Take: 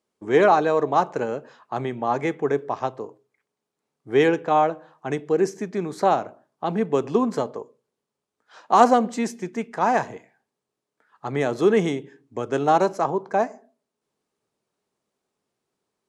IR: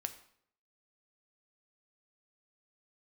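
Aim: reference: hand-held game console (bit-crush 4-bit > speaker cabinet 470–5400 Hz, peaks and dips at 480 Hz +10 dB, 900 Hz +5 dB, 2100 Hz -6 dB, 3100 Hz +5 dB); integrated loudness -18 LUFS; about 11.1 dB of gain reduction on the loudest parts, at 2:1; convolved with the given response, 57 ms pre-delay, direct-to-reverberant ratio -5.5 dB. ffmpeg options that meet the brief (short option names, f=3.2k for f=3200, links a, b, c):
-filter_complex "[0:a]acompressor=threshold=-30dB:ratio=2,asplit=2[a][b];[1:a]atrim=start_sample=2205,adelay=57[c];[b][c]afir=irnorm=-1:irlink=0,volume=6.5dB[d];[a][d]amix=inputs=2:normalize=0,acrusher=bits=3:mix=0:aa=0.000001,highpass=470,equalizer=f=480:t=q:w=4:g=10,equalizer=f=900:t=q:w=4:g=5,equalizer=f=2.1k:t=q:w=4:g=-6,equalizer=f=3.1k:t=q:w=4:g=5,lowpass=f=5.4k:w=0.5412,lowpass=f=5.4k:w=1.3066,volume=3.5dB"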